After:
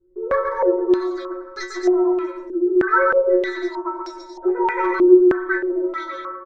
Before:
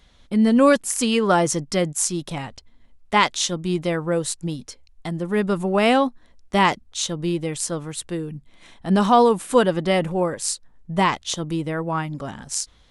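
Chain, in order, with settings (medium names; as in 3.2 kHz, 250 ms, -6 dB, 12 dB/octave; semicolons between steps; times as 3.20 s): de-esser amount 100%; bass shelf 280 Hz -6 dB; inharmonic resonator 90 Hz, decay 0.76 s, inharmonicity 0.002; de-hum 142.2 Hz, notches 3; in parallel at -8 dB: integer overflow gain 23.5 dB; on the sum: distance through air 220 m; static phaser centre 380 Hz, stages 6; bouncing-ball echo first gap 270 ms, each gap 0.7×, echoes 5; on a send at -9 dB: reverberation RT60 0.20 s, pre-delay 3 ms; on the sum: speed mistake 7.5 ips tape played at 15 ips; step-sequenced low-pass 3.2 Hz 340–5400 Hz; trim +8 dB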